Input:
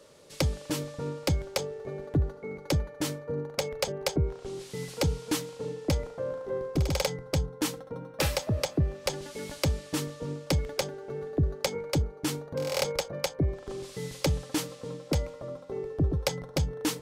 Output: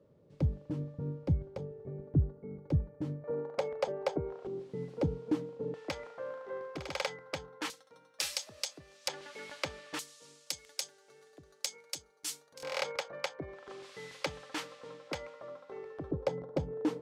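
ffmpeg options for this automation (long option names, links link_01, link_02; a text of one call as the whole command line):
ffmpeg -i in.wav -af "asetnsamples=nb_out_samples=441:pad=0,asendcmd='3.24 bandpass f 700;4.47 bandpass f 280;5.74 bandpass f 1600;7.7 bandpass f 5900;9.08 bandpass f 1700;9.99 bandpass f 7600;12.63 bandpass f 1600;16.11 bandpass f 410',bandpass=frequency=130:width_type=q:width=0.82:csg=0" out.wav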